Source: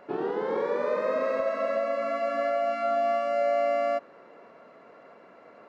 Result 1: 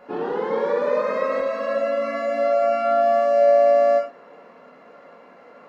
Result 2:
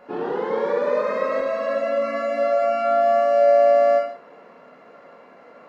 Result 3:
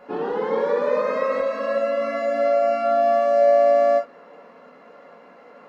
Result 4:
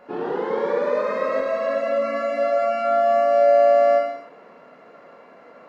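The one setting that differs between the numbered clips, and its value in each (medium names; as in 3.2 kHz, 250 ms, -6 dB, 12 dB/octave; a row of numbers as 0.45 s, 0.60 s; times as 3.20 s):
gated-style reverb, gate: 140 ms, 220 ms, 90 ms, 330 ms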